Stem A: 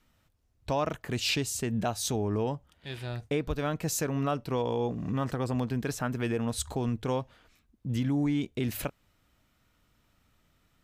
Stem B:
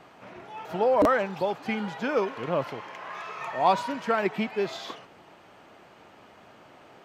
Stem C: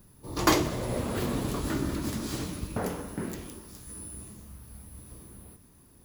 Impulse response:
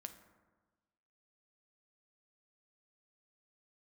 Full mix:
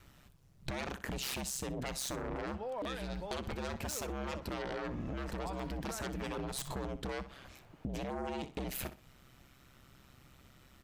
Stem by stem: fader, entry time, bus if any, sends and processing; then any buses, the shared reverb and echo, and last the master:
−6.0 dB, 0.00 s, no send, echo send −15.5 dB, sine wavefolder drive 13 dB, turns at −16.5 dBFS; ring modulation 66 Hz
−11.0 dB, 1.80 s, no send, no echo send, no processing
muted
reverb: not used
echo: repeating echo 62 ms, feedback 16%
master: downward compressor 10 to 1, threshold −36 dBFS, peak gain reduction 13 dB

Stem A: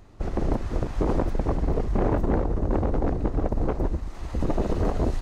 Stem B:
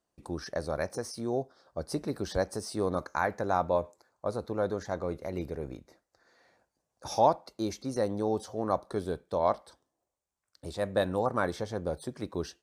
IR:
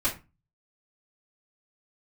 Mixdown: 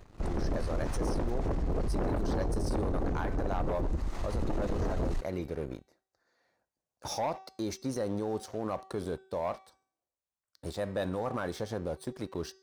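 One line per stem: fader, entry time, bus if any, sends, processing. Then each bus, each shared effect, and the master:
−5.5 dB, 0.00 s, no send, no processing
−5.5 dB, 0.00 s, no send, no processing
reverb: not used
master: leveller curve on the samples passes 2; hum removal 381.8 Hz, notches 22; brickwall limiter −25 dBFS, peak gain reduction 10.5 dB

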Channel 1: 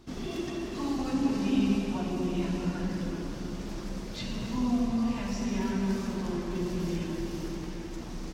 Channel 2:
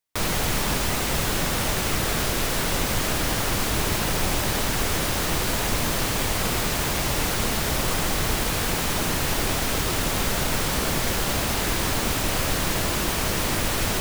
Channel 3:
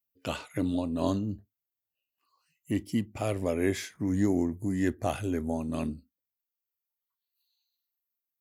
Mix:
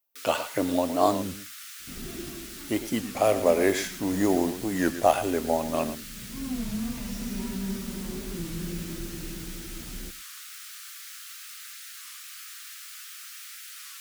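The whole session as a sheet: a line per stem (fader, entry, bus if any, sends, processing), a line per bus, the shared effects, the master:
−11.0 dB, 1.80 s, no send, echo send −19.5 dB, low-shelf EQ 370 Hz +11 dB; automatic ducking −11 dB, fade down 0.40 s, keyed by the third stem
−16.5 dB, 0.00 s, no send, no echo send, Butterworth high-pass 1,200 Hz 96 dB per octave; flanger 0.44 Hz, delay 5.7 ms, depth 6.3 ms, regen +64%
−1.0 dB, 0.00 s, no send, echo send −12.5 dB, low-shelf EQ 420 Hz −7 dB; noise that follows the level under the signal 20 dB; parametric band 670 Hz +14 dB 2.5 octaves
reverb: not used
echo: single-tap delay 112 ms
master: high-shelf EQ 3,200 Hz +8 dB; wow of a warped record 33 1/3 rpm, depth 160 cents

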